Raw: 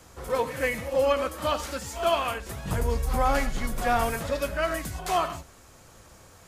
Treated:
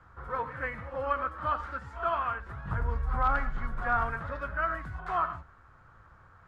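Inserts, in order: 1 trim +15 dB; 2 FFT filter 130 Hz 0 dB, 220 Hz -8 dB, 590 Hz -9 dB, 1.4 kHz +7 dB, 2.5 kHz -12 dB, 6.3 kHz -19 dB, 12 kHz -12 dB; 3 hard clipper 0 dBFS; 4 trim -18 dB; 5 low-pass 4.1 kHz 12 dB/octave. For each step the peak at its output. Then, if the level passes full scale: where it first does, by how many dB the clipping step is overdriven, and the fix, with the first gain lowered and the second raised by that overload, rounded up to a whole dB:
+1.0 dBFS, +3.5 dBFS, 0.0 dBFS, -18.0 dBFS, -17.5 dBFS; step 1, 3.5 dB; step 1 +11 dB, step 4 -14 dB

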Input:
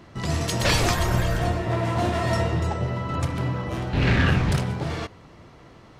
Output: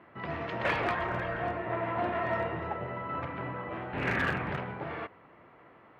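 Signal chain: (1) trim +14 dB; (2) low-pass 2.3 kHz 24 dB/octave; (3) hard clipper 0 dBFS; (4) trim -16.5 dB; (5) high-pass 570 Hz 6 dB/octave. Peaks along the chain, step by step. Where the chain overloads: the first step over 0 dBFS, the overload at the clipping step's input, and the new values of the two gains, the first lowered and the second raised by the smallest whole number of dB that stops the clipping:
+5.5 dBFS, +5.0 dBFS, 0.0 dBFS, -16.5 dBFS, -17.5 dBFS; step 1, 5.0 dB; step 1 +9 dB, step 4 -11.5 dB

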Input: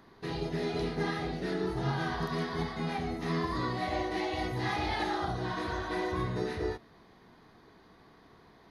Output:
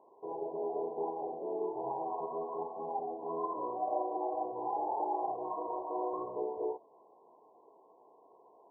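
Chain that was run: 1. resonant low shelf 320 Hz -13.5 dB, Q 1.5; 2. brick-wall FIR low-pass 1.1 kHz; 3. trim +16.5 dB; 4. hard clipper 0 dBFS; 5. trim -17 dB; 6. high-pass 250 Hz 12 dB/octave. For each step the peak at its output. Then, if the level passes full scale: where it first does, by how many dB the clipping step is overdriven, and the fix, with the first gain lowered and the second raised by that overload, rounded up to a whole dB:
-20.0 dBFS, -20.0 dBFS, -3.5 dBFS, -3.5 dBFS, -20.5 dBFS, -21.0 dBFS; nothing clips

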